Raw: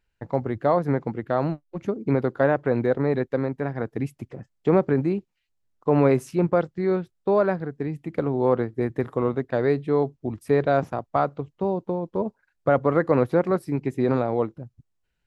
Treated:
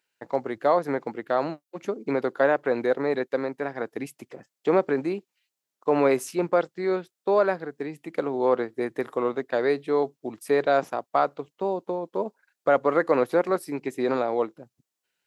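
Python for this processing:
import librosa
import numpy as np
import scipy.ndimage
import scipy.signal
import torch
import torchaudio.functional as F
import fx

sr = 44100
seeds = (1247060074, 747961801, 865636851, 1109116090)

y = scipy.signal.sosfilt(scipy.signal.butter(2, 330.0, 'highpass', fs=sr, output='sos'), x)
y = fx.high_shelf(y, sr, hz=3100.0, db=8.5)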